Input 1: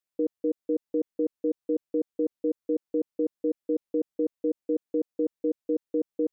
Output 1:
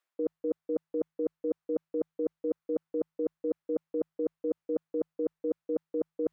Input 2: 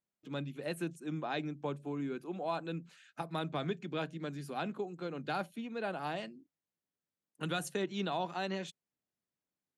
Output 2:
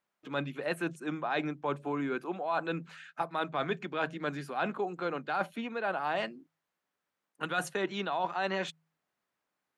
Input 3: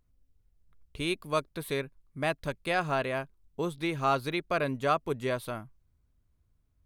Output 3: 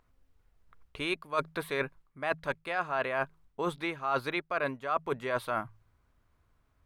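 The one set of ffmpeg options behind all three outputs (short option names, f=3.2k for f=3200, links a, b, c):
-af "equalizer=f=1.2k:w=0.4:g=15,bandreject=f=53.27:t=h:w=4,bandreject=f=106.54:t=h:w=4,bandreject=f=159.81:t=h:w=4,areverse,acompressor=threshold=-28dB:ratio=8,areverse"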